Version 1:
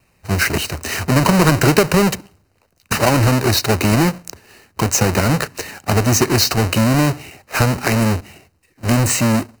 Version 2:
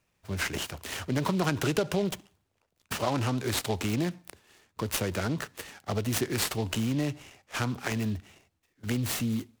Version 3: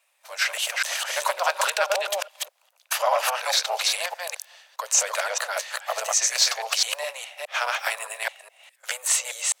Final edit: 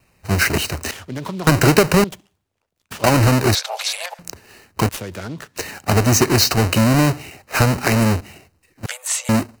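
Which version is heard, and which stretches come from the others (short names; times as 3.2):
1
0.91–1.47 from 2
2.04–3.04 from 2
3.55–4.19 from 3
4.89–5.56 from 2
8.86–9.29 from 3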